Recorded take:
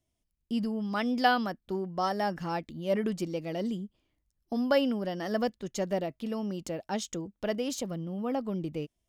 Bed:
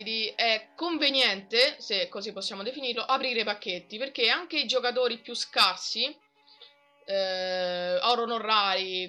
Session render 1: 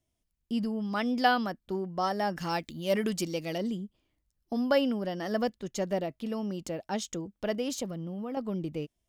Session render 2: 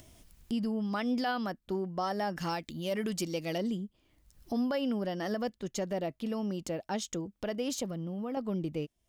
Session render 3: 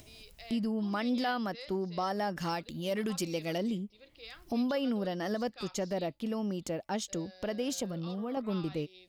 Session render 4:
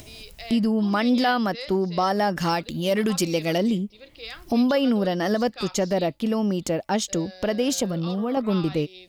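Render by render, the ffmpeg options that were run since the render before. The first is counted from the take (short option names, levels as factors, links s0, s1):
-filter_complex "[0:a]asettb=1/sr,asplit=3[s0][s1][s2];[s0]atrim=end=2.374[s3];[s1]atrim=start=2.37:end=3.58,asetpts=PTS-STARTPTS,afade=t=in:d=0.004:c=qsin,afade=t=out:st=1.206:d=0.004:c=qsin,highshelf=f=2300:g=11[s4];[s2]atrim=start=3.576[s5];[s3][s4]acrossfade=d=0.004:c1=hsin:c2=qsin[s6];[s6][s5]acrossfade=d=0.004:c1=qsin:c2=hsin,asettb=1/sr,asplit=3[s7][s8][s9];[s7]atrim=end=7.874[s10];[s8]atrim=start=7.87:end=8.37,asetpts=PTS-STARTPTS,afade=t=in:d=0.004:c=qsin,afade=t=out:st=0.496:d=0.004:c=qsin,acompressor=threshold=0.0251:ratio=6:attack=3.2:release=140:knee=1:detection=peak[s11];[s9]atrim=start=8.366[s12];[s10][s11]acrossfade=d=0.004:c1=hsin:c2=qsin[s13];[s13][s12]acrossfade=d=0.004:c1=qsin:c2=hsin"
-af "alimiter=limit=0.0668:level=0:latency=1:release=132,acompressor=mode=upward:threshold=0.0141:ratio=2.5"
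-filter_complex "[1:a]volume=0.0596[s0];[0:a][s0]amix=inputs=2:normalize=0"
-af "volume=3.35"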